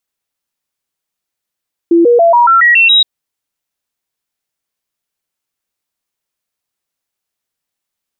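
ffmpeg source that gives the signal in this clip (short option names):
-f lavfi -i "aevalsrc='0.631*clip(min(mod(t,0.14),0.14-mod(t,0.14))/0.005,0,1)*sin(2*PI*338*pow(2,floor(t/0.14)/2)*mod(t,0.14))':d=1.12:s=44100"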